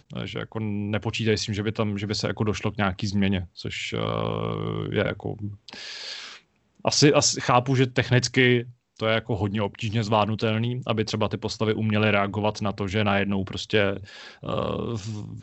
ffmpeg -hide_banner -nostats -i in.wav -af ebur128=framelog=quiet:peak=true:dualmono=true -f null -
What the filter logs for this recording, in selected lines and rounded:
Integrated loudness:
  I:         -21.9 LUFS
  Threshold: -32.2 LUFS
Loudness range:
  LRA:         5.7 LU
  Threshold: -41.9 LUFS
  LRA low:   -24.7 LUFS
  LRA high:  -19.0 LUFS
True peak:
  Peak:       -4.0 dBFS